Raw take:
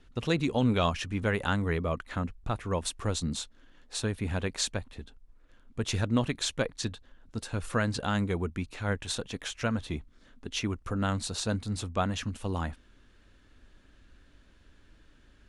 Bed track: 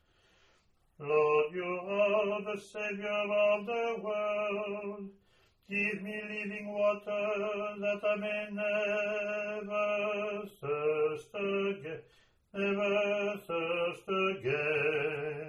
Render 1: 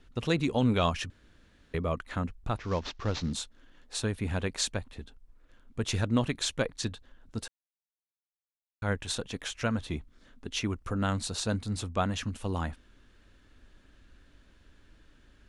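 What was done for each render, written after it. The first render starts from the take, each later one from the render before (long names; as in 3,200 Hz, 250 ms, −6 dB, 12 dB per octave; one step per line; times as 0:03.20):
0:01.10–0:01.74: fill with room tone
0:02.57–0:03.33: variable-slope delta modulation 32 kbit/s
0:07.48–0:08.82: silence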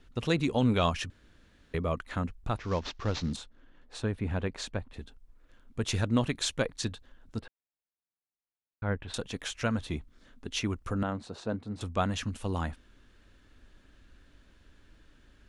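0:03.36–0:04.94: low-pass filter 1,800 Hz 6 dB per octave
0:07.39–0:09.14: high-frequency loss of the air 430 metres
0:11.03–0:11.81: resonant band-pass 460 Hz, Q 0.54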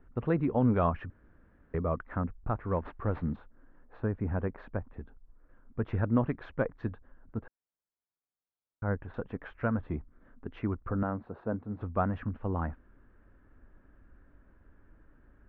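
low-pass filter 1,600 Hz 24 dB per octave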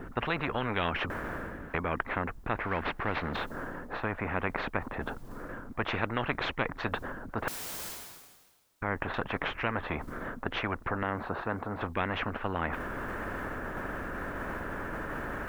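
reversed playback
upward compression, threshold −35 dBFS
reversed playback
every bin compressed towards the loudest bin 4 to 1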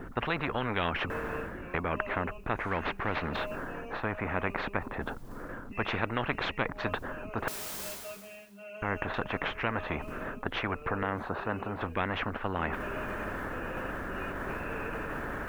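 mix in bed track −13.5 dB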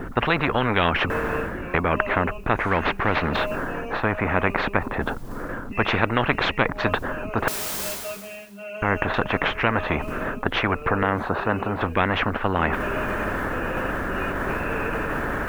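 level +10 dB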